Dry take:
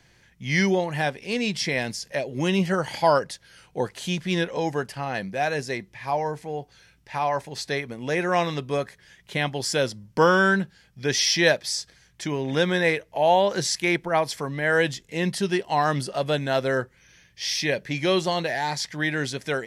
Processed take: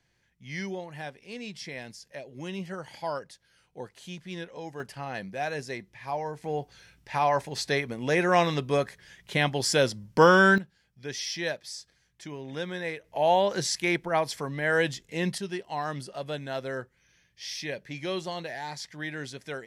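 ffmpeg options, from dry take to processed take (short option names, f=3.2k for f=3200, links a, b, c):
-af "asetnsamples=n=441:p=0,asendcmd='4.8 volume volume -6.5dB;6.44 volume volume 0.5dB;10.58 volume volume -12dB;13.04 volume volume -3.5dB;15.38 volume volume -10dB',volume=-13.5dB"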